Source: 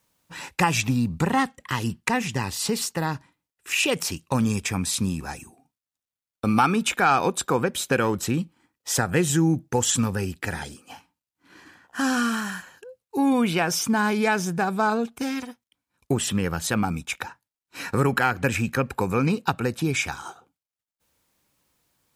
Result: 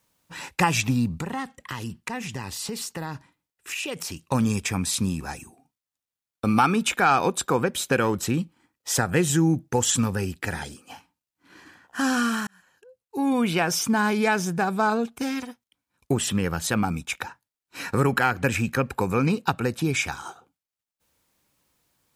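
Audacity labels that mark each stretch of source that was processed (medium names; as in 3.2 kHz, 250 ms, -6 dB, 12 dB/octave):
1.160000	4.270000	compression 2.5:1, threshold -31 dBFS
12.470000	13.560000	fade in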